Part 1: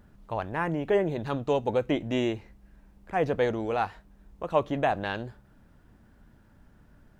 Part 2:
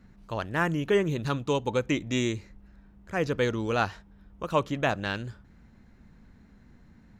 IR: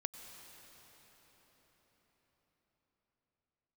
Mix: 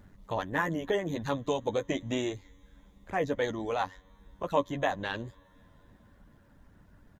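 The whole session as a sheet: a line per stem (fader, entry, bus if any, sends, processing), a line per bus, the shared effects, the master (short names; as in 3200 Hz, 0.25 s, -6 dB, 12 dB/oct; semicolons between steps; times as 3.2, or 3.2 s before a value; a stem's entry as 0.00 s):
0.0 dB, 0.00 s, no send, reverb removal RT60 0.64 s; compressor 2:1, threshold -30 dBFS, peak gain reduction 7 dB
-1.5 dB, 3.2 ms, send -21 dB, harmonic-percussive split harmonic -15 dB; ripple EQ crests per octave 1.1, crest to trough 16 dB; robotiser 93.6 Hz; auto duck -7 dB, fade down 1.75 s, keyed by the first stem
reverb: on, RT60 5.5 s, pre-delay 87 ms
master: dry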